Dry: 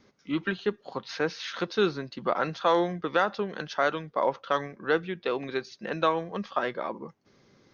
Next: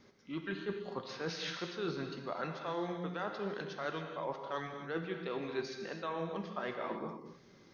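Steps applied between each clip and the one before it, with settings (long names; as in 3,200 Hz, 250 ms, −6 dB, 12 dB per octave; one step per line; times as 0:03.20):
reversed playback
downward compressor 6 to 1, threshold −35 dBFS, peak gain reduction 16 dB
reversed playback
reverb whose tail is shaped and stops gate 300 ms flat, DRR 3.5 dB
level −1.5 dB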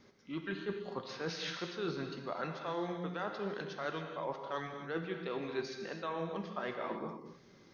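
no processing that can be heard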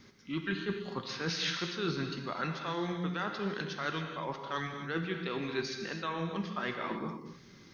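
parametric band 600 Hz −10.5 dB 1.5 octaves
level +8 dB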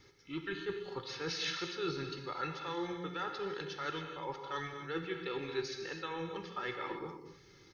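comb filter 2.3 ms, depth 81%
level −5.5 dB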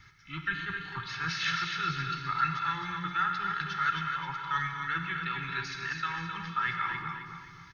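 drawn EQ curve 160 Hz 0 dB, 510 Hz −29 dB, 870 Hz −7 dB, 1,400 Hz +5 dB, 4,600 Hz −7 dB
on a send: repeating echo 262 ms, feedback 37%, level −6.5 dB
on the sum: level +8 dB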